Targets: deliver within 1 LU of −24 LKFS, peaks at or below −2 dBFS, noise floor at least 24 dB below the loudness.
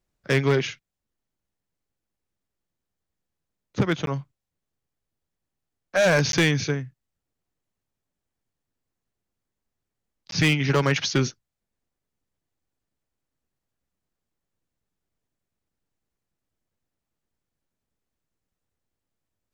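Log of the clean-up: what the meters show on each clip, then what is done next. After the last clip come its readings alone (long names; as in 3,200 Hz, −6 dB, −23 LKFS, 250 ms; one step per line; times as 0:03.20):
share of clipped samples 0.2%; peaks flattened at −13.5 dBFS; number of dropouts 3; longest dropout 12 ms; integrated loudness −23.0 LKFS; sample peak −13.5 dBFS; target loudness −24.0 LKFS
→ clipped peaks rebuilt −13.5 dBFS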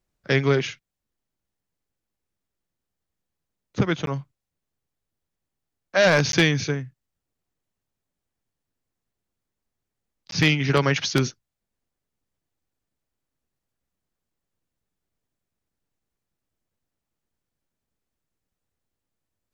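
share of clipped samples 0.0%; number of dropouts 3; longest dropout 12 ms
→ repair the gap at 0:04.06/0:06.32/0:10.31, 12 ms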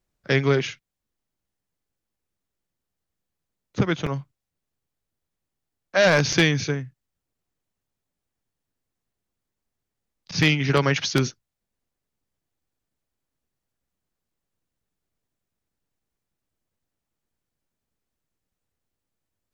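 number of dropouts 0; integrated loudness −22.0 LKFS; sample peak −4.5 dBFS; target loudness −24.0 LKFS
→ level −2 dB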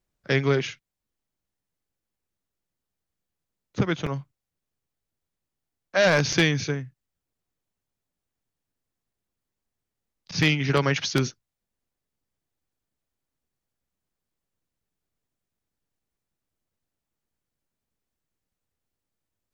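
integrated loudness −24.0 LKFS; sample peak −6.5 dBFS; background noise floor −86 dBFS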